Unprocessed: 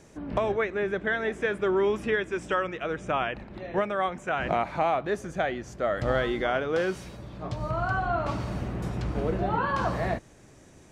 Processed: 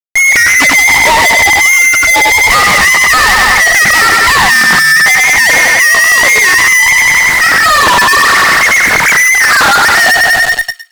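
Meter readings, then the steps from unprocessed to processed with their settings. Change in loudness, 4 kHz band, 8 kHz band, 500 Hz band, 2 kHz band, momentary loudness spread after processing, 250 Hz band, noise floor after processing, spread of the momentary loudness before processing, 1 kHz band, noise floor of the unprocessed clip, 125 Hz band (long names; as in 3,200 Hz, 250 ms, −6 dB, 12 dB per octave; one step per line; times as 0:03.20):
+24.0 dB, +31.5 dB, +42.5 dB, +7.0 dB, +30.5 dB, 1 LU, +8.5 dB, −10 dBFS, 7 LU, +20.0 dB, −53 dBFS, +6.5 dB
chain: three sine waves on the formant tracks
noise gate with hold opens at −54 dBFS
repeating echo 95 ms, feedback 55%, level −8 dB
dynamic equaliser 820 Hz, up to −5 dB, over −41 dBFS, Q 5.6
voice inversion scrambler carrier 2,500 Hz
downward compressor, threshold −34 dBFS, peak gain reduction 16.5 dB
fuzz pedal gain 64 dB, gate −57 dBFS
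delay with a high-pass on its return 110 ms, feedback 32%, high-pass 1,600 Hz, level −12.5 dB
highs frequency-modulated by the lows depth 0.22 ms
level +7.5 dB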